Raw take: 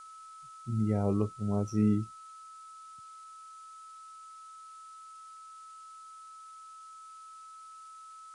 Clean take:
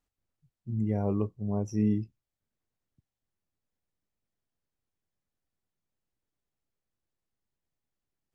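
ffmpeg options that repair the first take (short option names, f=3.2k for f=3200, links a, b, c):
-af "bandreject=f=1.3k:w=30,afftdn=nr=30:nf=-50"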